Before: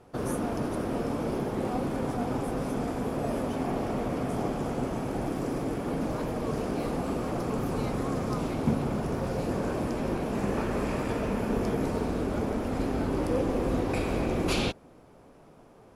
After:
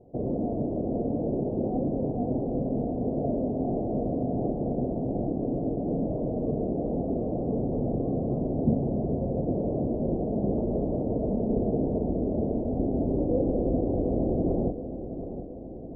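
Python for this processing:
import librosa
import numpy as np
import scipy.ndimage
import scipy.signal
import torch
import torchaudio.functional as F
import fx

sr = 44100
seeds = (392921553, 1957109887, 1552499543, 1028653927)

p1 = scipy.signal.sosfilt(scipy.signal.ellip(4, 1.0, 60, 680.0, 'lowpass', fs=sr, output='sos'), x)
p2 = p1 + fx.echo_feedback(p1, sr, ms=723, feedback_pct=58, wet_db=-11.0, dry=0)
y = p2 * 10.0 ** (2.5 / 20.0)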